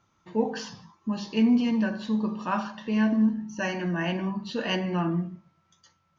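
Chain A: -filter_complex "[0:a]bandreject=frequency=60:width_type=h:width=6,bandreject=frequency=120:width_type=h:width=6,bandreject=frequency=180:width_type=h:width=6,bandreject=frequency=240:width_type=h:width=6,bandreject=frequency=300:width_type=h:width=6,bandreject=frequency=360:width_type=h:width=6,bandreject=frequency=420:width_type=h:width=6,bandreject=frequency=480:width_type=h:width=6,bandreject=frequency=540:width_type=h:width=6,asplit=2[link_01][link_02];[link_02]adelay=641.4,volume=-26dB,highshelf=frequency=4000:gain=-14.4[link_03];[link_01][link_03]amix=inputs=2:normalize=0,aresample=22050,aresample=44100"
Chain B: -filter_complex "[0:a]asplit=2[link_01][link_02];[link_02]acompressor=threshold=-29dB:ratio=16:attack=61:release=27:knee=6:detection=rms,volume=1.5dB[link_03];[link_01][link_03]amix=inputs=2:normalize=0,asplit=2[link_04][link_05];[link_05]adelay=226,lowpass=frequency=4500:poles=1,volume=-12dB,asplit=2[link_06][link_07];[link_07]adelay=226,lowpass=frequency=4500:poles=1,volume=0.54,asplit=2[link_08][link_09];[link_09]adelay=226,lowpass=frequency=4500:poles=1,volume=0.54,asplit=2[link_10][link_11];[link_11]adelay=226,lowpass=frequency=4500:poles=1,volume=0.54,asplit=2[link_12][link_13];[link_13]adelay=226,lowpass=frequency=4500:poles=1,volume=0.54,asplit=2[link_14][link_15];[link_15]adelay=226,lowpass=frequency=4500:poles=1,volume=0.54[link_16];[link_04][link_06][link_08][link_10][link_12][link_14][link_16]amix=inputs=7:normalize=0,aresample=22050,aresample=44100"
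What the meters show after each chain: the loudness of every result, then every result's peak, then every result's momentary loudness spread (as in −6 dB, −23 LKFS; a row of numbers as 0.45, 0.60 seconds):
−28.0, −22.5 LKFS; −14.0, −9.0 dBFS; 10, 12 LU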